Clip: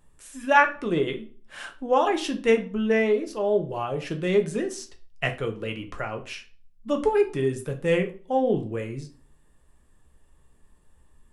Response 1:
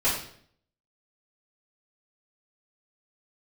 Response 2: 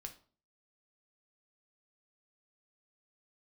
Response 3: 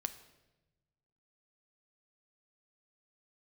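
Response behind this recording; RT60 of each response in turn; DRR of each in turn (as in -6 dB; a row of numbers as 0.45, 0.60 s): 2; 0.60, 0.45, 1.1 s; -11.5, 4.5, 9.5 dB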